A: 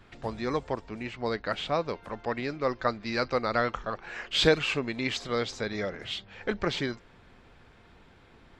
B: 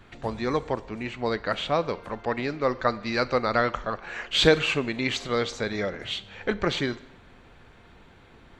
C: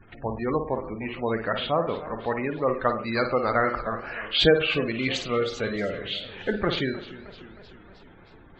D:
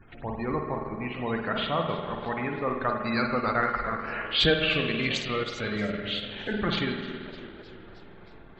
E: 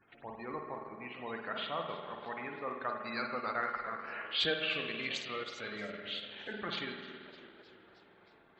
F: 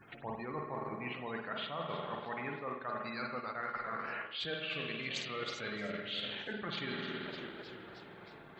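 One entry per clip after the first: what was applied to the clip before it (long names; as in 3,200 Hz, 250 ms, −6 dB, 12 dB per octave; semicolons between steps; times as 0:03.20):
notch filter 5,100 Hz, Q 10; four-comb reverb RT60 0.82 s, combs from 32 ms, DRR 17 dB; level +3.5 dB
flutter between parallel walls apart 9.1 metres, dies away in 0.41 s; gate on every frequency bin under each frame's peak −20 dB strong; feedback echo with a swinging delay time 308 ms, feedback 61%, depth 139 cents, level −16.5 dB
dynamic equaliser 480 Hz, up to −6 dB, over −37 dBFS, Q 0.91; spring reverb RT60 1.9 s, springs 48 ms, chirp 35 ms, DRR 3 dB; transient designer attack −3 dB, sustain −7 dB
high-pass filter 480 Hz 6 dB per octave; level −8 dB
parametric band 140 Hz +7.5 dB 0.75 octaves; reversed playback; downward compressor 12 to 1, threshold −45 dBFS, peak gain reduction 18 dB; reversed playback; level +9 dB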